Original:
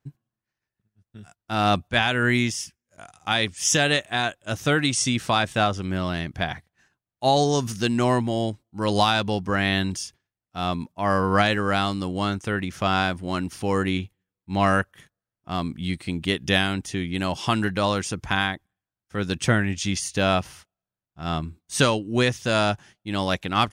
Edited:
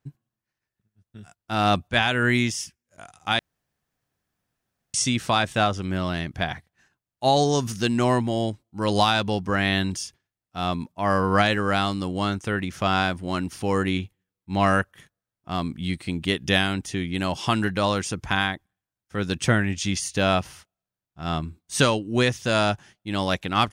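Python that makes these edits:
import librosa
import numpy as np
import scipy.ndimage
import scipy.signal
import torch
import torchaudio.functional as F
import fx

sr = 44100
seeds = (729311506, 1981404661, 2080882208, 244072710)

y = fx.edit(x, sr, fx.room_tone_fill(start_s=3.39, length_s=1.55), tone=tone)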